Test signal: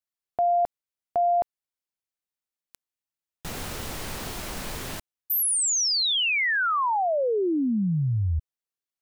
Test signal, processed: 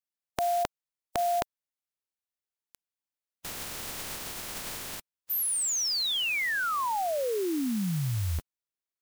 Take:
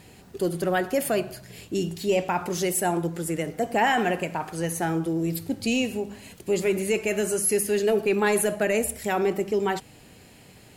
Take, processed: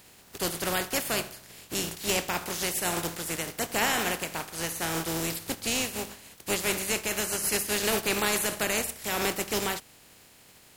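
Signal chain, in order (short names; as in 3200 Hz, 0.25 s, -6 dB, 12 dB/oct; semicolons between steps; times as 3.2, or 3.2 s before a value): spectral contrast lowered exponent 0.41; gain -4.5 dB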